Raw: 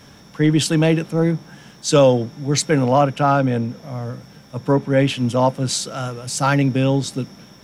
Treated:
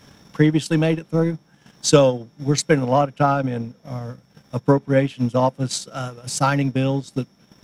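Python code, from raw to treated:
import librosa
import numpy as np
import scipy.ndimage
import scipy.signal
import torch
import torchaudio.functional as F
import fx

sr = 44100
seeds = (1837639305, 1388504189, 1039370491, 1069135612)

y = fx.transient(x, sr, attack_db=8, sustain_db=-11)
y = y * librosa.db_to_amplitude(-4.0)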